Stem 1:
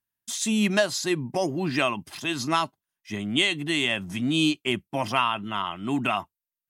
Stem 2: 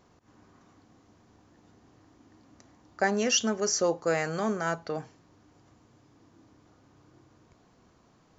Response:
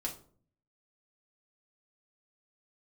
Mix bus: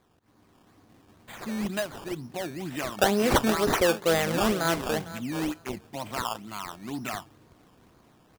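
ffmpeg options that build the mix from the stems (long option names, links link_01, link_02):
-filter_complex "[0:a]highshelf=frequency=5800:gain=-7.5,adelay=1000,volume=-16dB,asplit=2[link_01][link_02];[link_02]volume=-20dB[link_03];[1:a]volume=-4dB,asplit=2[link_04][link_05];[link_05]volume=-16dB[link_06];[2:a]atrim=start_sample=2205[link_07];[link_03][link_07]afir=irnorm=-1:irlink=0[link_08];[link_06]aecho=0:1:452|904|1356:1|0.15|0.0225[link_09];[link_01][link_04][link_08][link_09]amix=inputs=4:normalize=0,dynaudnorm=framelen=290:gausssize=5:maxgain=7.5dB,acrusher=samples=15:mix=1:aa=0.000001:lfo=1:lforange=15:lforate=2.1"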